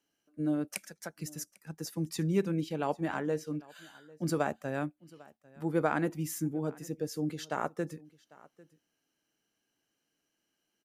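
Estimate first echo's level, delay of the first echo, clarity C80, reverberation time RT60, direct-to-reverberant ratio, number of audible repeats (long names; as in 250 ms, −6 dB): −23.0 dB, 798 ms, no reverb audible, no reverb audible, no reverb audible, 1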